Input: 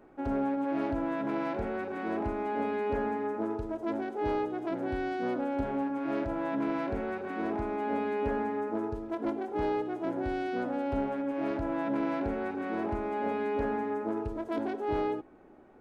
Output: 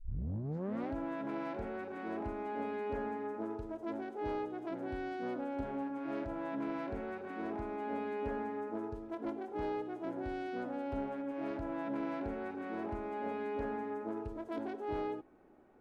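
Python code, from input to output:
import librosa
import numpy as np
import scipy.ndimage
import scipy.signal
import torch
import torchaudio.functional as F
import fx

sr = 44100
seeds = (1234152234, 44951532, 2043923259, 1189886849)

y = fx.tape_start_head(x, sr, length_s=0.94)
y = F.gain(torch.from_numpy(y), -7.0).numpy()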